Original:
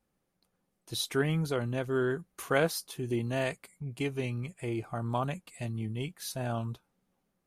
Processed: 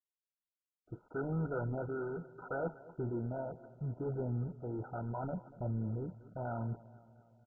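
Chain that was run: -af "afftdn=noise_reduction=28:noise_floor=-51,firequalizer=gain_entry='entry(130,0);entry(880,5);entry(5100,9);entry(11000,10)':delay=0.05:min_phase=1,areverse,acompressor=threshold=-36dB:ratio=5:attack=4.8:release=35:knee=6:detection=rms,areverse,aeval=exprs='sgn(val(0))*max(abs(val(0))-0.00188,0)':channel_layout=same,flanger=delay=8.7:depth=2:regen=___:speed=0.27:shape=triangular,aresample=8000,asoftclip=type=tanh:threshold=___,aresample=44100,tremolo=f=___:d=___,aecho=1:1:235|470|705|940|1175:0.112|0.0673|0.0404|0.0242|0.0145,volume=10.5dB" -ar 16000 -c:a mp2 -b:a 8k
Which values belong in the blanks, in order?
-65, -39.5dB, 0.71, 0.4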